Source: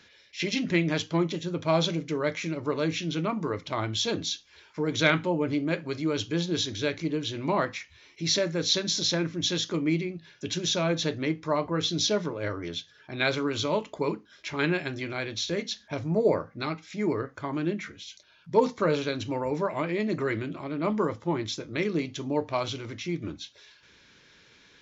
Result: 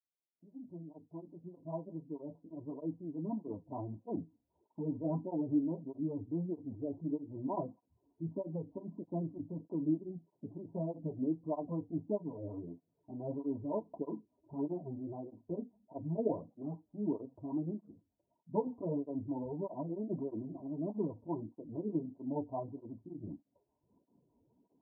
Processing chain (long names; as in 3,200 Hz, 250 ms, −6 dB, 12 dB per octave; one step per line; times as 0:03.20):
fade in at the beginning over 4.12 s
rotating-speaker cabinet horn 5 Hz
Chebyshev low-pass with heavy ripple 1,000 Hz, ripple 9 dB
through-zero flanger with one copy inverted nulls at 1.6 Hz, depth 6.3 ms